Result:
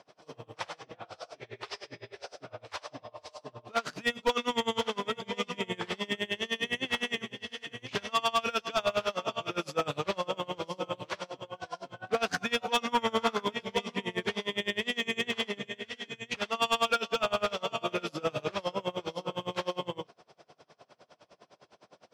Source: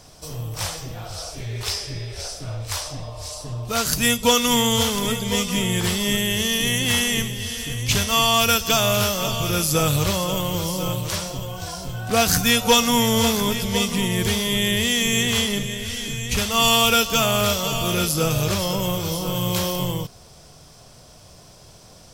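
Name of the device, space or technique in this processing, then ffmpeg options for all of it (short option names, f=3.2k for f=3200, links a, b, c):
helicopter radio: -filter_complex "[0:a]highpass=330,lowpass=2.6k,aeval=exprs='val(0)*pow(10,-28*(0.5-0.5*cos(2*PI*9.8*n/s))/20)':c=same,asoftclip=type=hard:threshold=-20.5dB,asettb=1/sr,asplit=3[a][b][c];[a]atrim=end=12.924[d];[b]atrim=start=12.92:end=13.44,asetpts=PTS-STARTPTS,afade=t=in:d=0.004:c=qsin,afade=t=out:st=0.516:d=0.004:c=qsin,equalizer=f=1.3k:w=4:g=12.5[e];[c]atrim=start=13.436[f];[d][e]acrossfade=d=0.004:c1=hsin:c2=qsin[g];[g][f]acrossfade=d=0.004:c1=qsin:c2=hsin"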